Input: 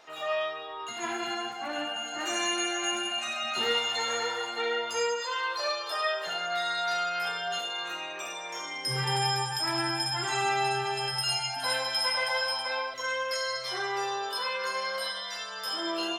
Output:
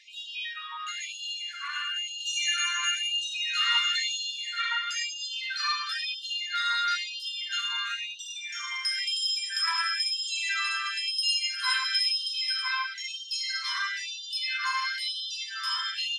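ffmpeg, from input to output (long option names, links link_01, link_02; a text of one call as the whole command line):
ffmpeg -i in.wav -af "lowpass=6600,afftfilt=real='re*gte(b*sr/1024,940*pow(2800/940,0.5+0.5*sin(2*PI*1*pts/sr)))':imag='im*gte(b*sr/1024,940*pow(2800/940,0.5+0.5*sin(2*PI*1*pts/sr)))':win_size=1024:overlap=0.75,volume=4.5dB" out.wav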